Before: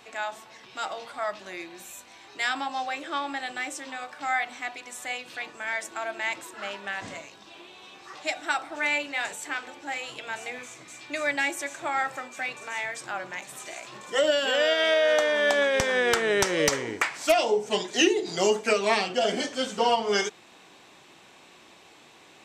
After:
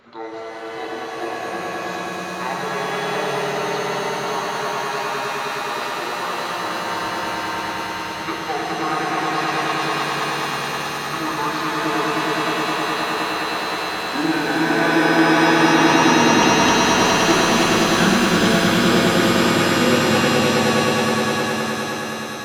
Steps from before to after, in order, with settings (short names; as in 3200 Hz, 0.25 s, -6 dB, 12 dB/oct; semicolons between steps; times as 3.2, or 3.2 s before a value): delay-line pitch shifter -11 st; swelling echo 0.104 s, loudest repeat 5, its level -4 dB; shimmer reverb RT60 2.9 s, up +7 st, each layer -2 dB, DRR 0.5 dB